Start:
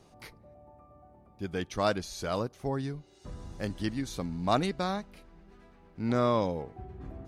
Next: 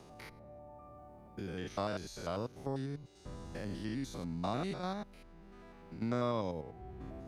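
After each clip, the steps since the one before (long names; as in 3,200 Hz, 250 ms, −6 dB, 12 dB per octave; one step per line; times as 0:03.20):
spectrum averaged block by block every 100 ms
multiband upward and downward compressor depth 40%
level −5 dB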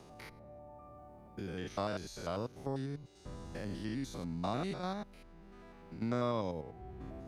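no processing that can be heard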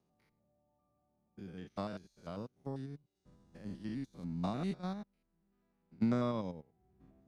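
parametric band 190 Hz +8 dB 1.1 octaves
expander for the loud parts 2.5 to 1, over −46 dBFS
level +1.5 dB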